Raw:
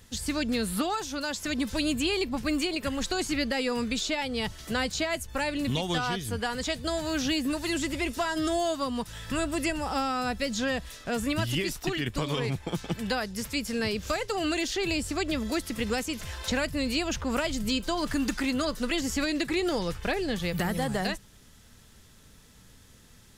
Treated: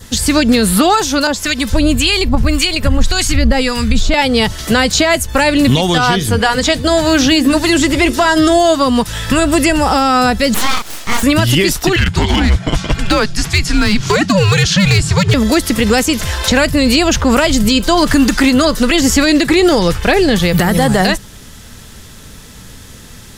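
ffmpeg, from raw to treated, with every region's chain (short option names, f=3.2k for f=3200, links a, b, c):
-filter_complex "[0:a]asettb=1/sr,asplit=3[a][b][c];[a]atrim=end=1.274[d];[b]atrim=start=1.27:end=4.14,asetpts=PTS-STARTPTS,afade=t=in:d=0.004:c=qsin,afade=t=out:st=2.866:d=0.004:c=qsin,asubboost=boost=11:cutoff=120,acrossover=split=1300[e][f];[e]aeval=exprs='val(0)*(1-0.7/2+0.7/2*cos(2*PI*1.8*n/s))':c=same[g];[f]aeval=exprs='val(0)*(1-0.7/2-0.7/2*cos(2*PI*1.8*n/s))':c=same[h];[g][h]amix=inputs=2:normalize=0[i];[c]atrim=start=4.136[j];[d][i]acrossfade=d=0.004:c1=hsin:c2=qsin[k];[k][j]acrossfade=d=0.004:c1=qsin:c2=hsin,asettb=1/sr,asplit=3[l][m][n];[l]atrim=end=6.114[o];[m]atrim=start=6.11:end=8.87,asetpts=PTS-STARTPTS,afade=t=in:d=0.004:c=qsin,afade=t=out:st=2.756:d=0.004:c=qsin,highshelf=f=7.8k:g=-4.5,bandreject=f=60:t=h:w=6,bandreject=f=120:t=h:w=6,bandreject=f=180:t=h:w=6,bandreject=f=240:t=h:w=6,bandreject=f=300:t=h:w=6,bandreject=f=360:t=h:w=6,bandreject=f=420:t=h:w=6,bandreject=f=480:t=h:w=6[p];[n]atrim=start=8.866[q];[o][p]acrossfade=d=0.004:c1=hsin:c2=qsin[r];[r][q]acrossfade=d=0.004:c1=qsin:c2=hsin,asettb=1/sr,asplit=3[s][t][u];[s]atrim=end=10.544[v];[t]atrim=start=10.54:end=11.23,asetpts=PTS-STARTPTS,afade=t=in:d=0.004:c=qsin,afade=t=out:st=0.686:d=0.004:c=qsin,highpass=470,asplit=2[w][x];[x]adelay=31,volume=-3.5dB[y];[w][y]amix=inputs=2:normalize=0,atrim=end_sample=30429,aeval=exprs='abs(val(0))':c=same[z];[u]atrim=start=11.226[aa];[v][z]acrossfade=d=0.004:c1=hsin:c2=qsin[ab];[ab][aa]acrossfade=d=0.004:c1=qsin:c2=hsin,asettb=1/sr,asplit=3[ac][ad][ae];[ac]atrim=end=11.964[af];[ad]atrim=start=11.96:end=15.34,asetpts=PTS-STARTPTS,afade=t=in:d=0.004:c=qsin,afade=t=out:st=3.376:d=0.004:c=qsin,lowpass=7.7k,volume=23.5dB,asoftclip=hard,volume=-23.5dB,afreqshift=-200[ag];[ae]atrim=start=15.336[ah];[af][ag]acrossfade=d=0.004:c1=hsin:c2=qsin[ai];[ai][ah]acrossfade=d=0.004:c1=qsin:c2=hsin,adynamicequalizer=threshold=0.00398:dfrequency=2500:dqfactor=4:tfrequency=2500:tqfactor=4:attack=5:release=100:ratio=0.375:range=1.5:mode=cutabove:tftype=bell,alimiter=level_in=20.5dB:limit=-1dB:release=50:level=0:latency=1,volume=-1dB"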